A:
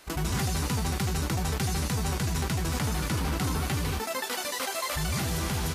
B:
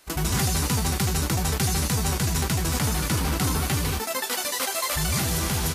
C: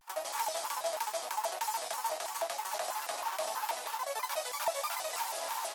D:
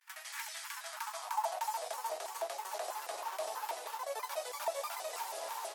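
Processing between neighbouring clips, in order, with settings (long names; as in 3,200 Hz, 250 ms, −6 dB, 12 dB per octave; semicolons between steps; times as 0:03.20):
high-shelf EQ 5,500 Hz +6.5 dB; expander for the loud parts 1.5 to 1, over −44 dBFS; level +4.5 dB
four-pole ladder high-pass 730 Hz, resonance 75%; pitch modulation by a square or saw wave square 3.1 Hz, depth 250 cents
high-pass filter sweep 1,800 Hz → 410 Hz, 0:00.70–0:02.06; level −6 dB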